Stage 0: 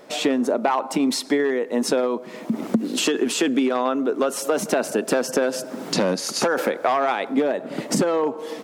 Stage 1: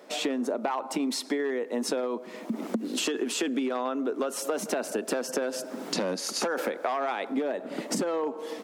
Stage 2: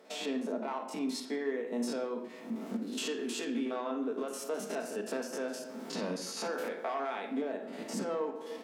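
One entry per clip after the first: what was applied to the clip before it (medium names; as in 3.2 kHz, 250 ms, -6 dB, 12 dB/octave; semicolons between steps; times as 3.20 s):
high-pass 190 Hz 24 dB/octave; compression 2.5:1, threshold -22 dBFS, peak gain reduction 5.5 dB; trim -4.5 dB
spectrogram pixelated in time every 50 ms; reverberation RT60 0.75 s, pre-delay 4 ms, DRR 2.5 dB; trim -7 dB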